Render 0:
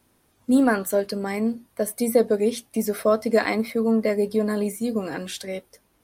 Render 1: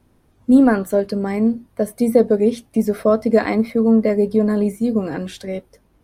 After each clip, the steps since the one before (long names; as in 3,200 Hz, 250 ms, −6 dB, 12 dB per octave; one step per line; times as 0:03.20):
spectral tilt −2.5 dB per octave
level +2 dB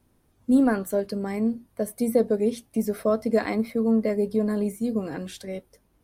high-shelf EQ 5,900 Hz +8 dB
level −7.5 dB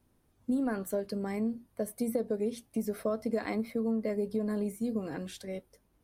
downward compressor, threshold −22 dBFS, peak gain reduction 8 dB
level −5 dB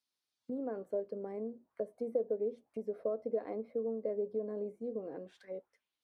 envelope filter 490–4,700 Hz, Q 2.3, down, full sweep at −34 dBFS